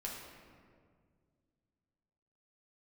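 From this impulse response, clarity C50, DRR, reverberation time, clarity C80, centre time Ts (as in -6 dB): 1.5 dB, -3.5 dB, 2.0 s, 3.5 dB, 80 ms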